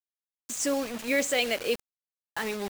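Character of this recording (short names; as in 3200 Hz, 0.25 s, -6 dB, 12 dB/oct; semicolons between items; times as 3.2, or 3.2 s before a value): a quantiser's noise floor 6-bit, dither none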